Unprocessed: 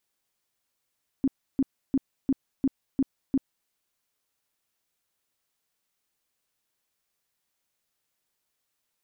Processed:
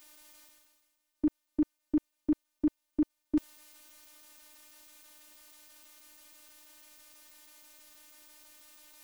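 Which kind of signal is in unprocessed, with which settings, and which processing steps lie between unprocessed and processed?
tone bursts 269 Hz, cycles 10, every 0.35 s, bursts 7, -19 dBFS
reverse; upward compressor, threshold -34 dBFS; reverse; robot voice 302 Hz

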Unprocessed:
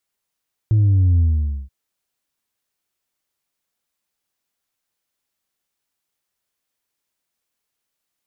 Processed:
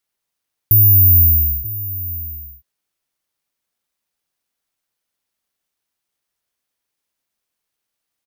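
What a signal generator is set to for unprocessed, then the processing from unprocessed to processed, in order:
sub drop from 110 Hz, over 0.98 s, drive 2 dB, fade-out 0.50 s, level -12 dB
low-pass that closes with the level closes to 350 Hz, closed at -13.5 dBFS; echo from a far wall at 160 m, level -15 dB; careless resampling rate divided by 3×, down filtered, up zero stuff

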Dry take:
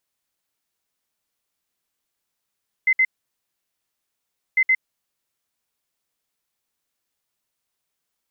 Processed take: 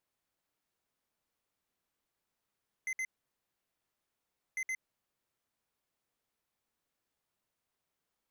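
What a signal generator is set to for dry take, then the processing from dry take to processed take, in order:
beep pattern sine 2.06 kHz, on 0.06 s, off 0.06 s, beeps 2, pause 1.52 s, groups 2, -13.5 dBFS
treble shelf 2.2 kHz -9.5 dB; peak limiter -25.5 dBFS; hard clipper -35 dBFS

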